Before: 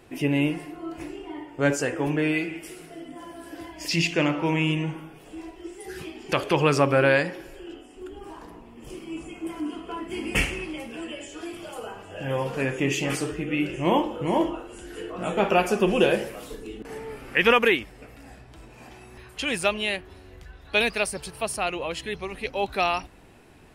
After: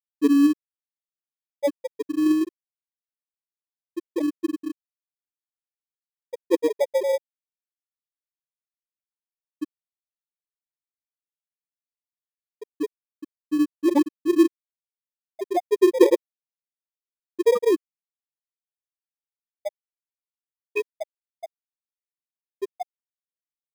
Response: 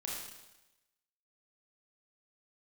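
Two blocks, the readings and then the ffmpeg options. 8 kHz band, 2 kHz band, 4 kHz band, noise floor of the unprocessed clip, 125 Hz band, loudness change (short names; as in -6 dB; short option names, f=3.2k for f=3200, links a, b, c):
-8.5 dB, -15.0 dB, -13.0 dB, -48 dBFS, under -30 dB, +2.0 dB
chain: -filter_complex "[0:a]lowshelf=f=240:t=q:w=3:g=-8.5,aphaser=in_gain=1:out_gain=1:delay=4.7:decay=0.25:speed=0.12:type=sinusoidal,afftfilt=real='re*gte(hypot(re,im),1)':imag='im*gte(hypot(re,im),1)':win_size=1024:overlap=0.75,asplit=2[a][b];[b]acrusher=samples=31:mix=1:aa=0.000001,volume=-10dB[c];[a][c]amix=inputs=2:normalize=0"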